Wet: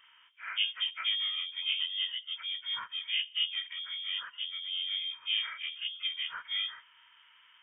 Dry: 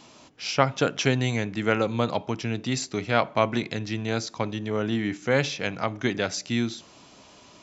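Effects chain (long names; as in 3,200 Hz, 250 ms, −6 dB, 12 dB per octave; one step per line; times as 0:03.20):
partials spread apart or drawn together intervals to 76%
formants moved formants −5 semitones
voice inversion scrambler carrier 3,400 Hz
level −8 dB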